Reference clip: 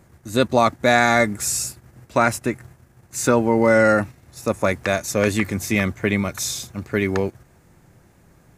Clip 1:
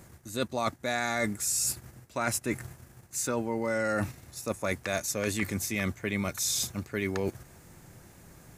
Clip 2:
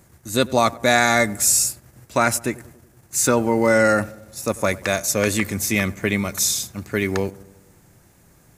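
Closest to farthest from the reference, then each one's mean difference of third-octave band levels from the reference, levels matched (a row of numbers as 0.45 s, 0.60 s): 2, 1; 3.5 dB, 6.0 dB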